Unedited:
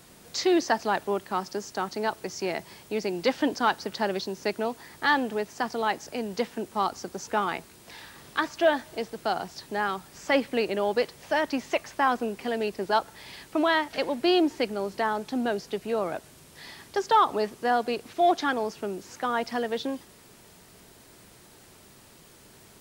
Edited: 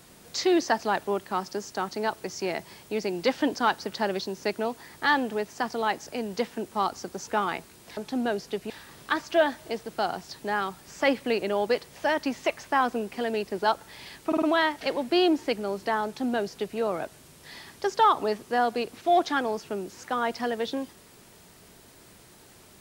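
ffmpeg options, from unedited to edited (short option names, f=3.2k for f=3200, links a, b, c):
-filter_complex "[0:a]asplit=6[a][b][c][d][e][f];[a]atrim=end=7.972[g];[b]atrim=start=15.168:end=15.902[h];[c]atrim=start=7.968:end=13.592[i];[d]atrim=start=13.538:end=13.592[j];[e]atrim=start=13.538:end=13.592[k];[f]atrim=start=13.538[l];[g][h]acrossfade=d=0.004:c1=hsin:c2=hsin[m];[m][i]acrossfade=d=0.004:c1=hsin:c2=hsin[n];[n][j]acrossfade=d=0.004:c1=hsin:c2=hsin[o];[o][k]acrossfade=d=0.004:c1=hsin:c2=hsin[p];[p][l]acrossfade=d=0.004:c1=hsin:c2=hsin"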